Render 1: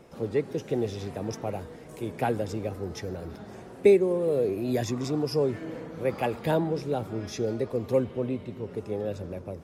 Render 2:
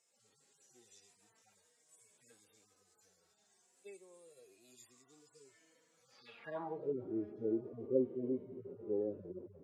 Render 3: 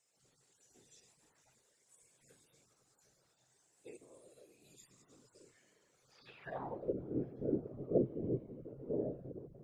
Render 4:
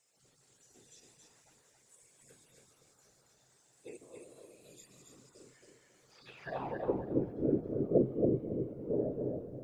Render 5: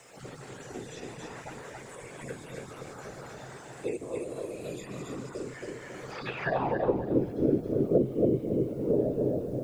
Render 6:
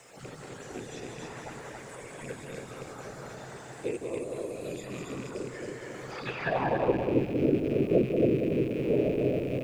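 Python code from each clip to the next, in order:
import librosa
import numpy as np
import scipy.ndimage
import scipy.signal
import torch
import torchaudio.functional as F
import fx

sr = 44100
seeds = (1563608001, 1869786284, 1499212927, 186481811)

y1 = fx.hpss_only(x, sr, part='harmonic')
y1 = fx.filter_sweep_bandpass(y1, sr, from_hz=7500.0, to_hz=350.0, start_s=6.07, end_s=6.96, q=3.7)
y1 = y1 * librosa.db_to_amplitude(2.0)
y2 = fx.whisperise(y1, sr, seeds[0])
y2 = fx.peak_eq(y2, sr, hz=130.0, db=11.5, octaves=0.44)
y2 = y2 * librosa.db_to_amplitude(-1.0)
y3 = fx.echo_feedback(y2, sr, ms=275, feedback_pct=21, wet_db=-4.0)
y3 = y3 * librosa.db_to_amplitude(4.0)
y4 = fx.band_squash(y3, sr, depth_pct=70)
y4 = y4 * librosa.db_to_amplitude(8.0)
y5 = fx.rattle_buzz(y4, sr, strikes_db=-39.0, level_db=-35.0)
y5 = y5 + 10.0 ** (-6.5 / 20.0) * np.pad(y5, (int(189 * sr / 1000.0), 0))[:len(y5)]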